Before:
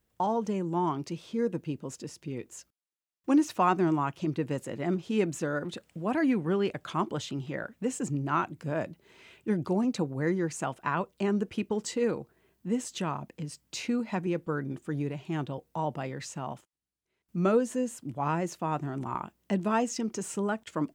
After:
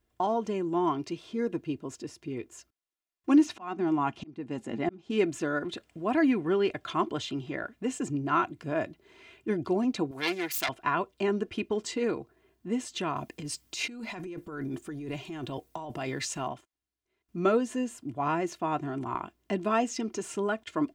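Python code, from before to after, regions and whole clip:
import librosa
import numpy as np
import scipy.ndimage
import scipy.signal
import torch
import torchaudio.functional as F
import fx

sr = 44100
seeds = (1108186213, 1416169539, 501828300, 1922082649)

y = fx.chain(x, sr, fx.lowpass(hz=9100.0, slope=12),
    fx.small_body(hz=(220.0, 810.0), ring_ms=75, db=12),
    fx.auto_swell(attack_ms=546.0), at=(3.46, 5.1))
y = fx.chain(y, sr, fx.self_delay(depth_ms=0.35),
    fx.tilt_eq(slope=4.0), at=(10.11, 10.69))
y = fx.chain(y, sr, fx.high_shelf(hz=5000.0, db=11.0),
    fx.over_compress(threshold_db=-36.0, ratio=-1.0), at=(13.16, 16.48))
y = fx.high_shelf(y, sr, hz=6200.0, db=-7.5)
y = y + 0.52 * np.pad(y, (int(2.9 * sr / 1000.0), 0))[:len(y)]
y = fx.dynamic_eq(y, sr, hz=3200.0, q=0.87, threshold_db=-50.0, ratio=4.0, max_db=4)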